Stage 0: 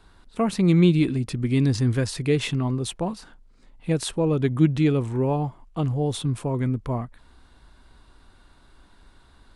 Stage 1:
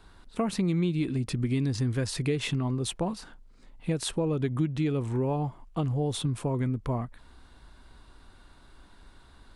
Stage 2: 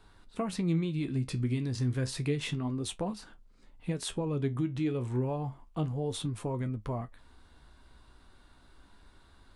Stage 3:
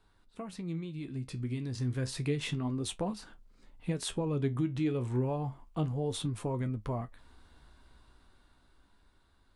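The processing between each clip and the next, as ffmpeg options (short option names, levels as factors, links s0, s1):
-af "acompressor=threshold=0.0562:ratio=4"
-af "flanger=delay=9.4:depth=6.9:regen=58:speed=0.3:shape=sinusoidal"
-af "dynaudnorm=f=320:g=11:m=2.82,volume=0.355"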